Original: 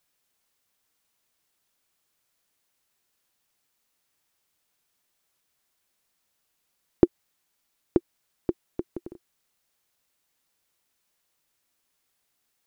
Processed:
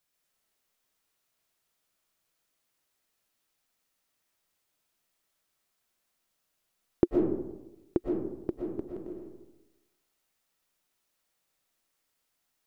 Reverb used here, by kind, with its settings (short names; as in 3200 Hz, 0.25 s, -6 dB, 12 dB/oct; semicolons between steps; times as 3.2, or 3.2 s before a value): digital reverb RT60 1 s, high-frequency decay 0.4×, pre-delay 80 ms, DRR -1 dB; gain -5.5 dB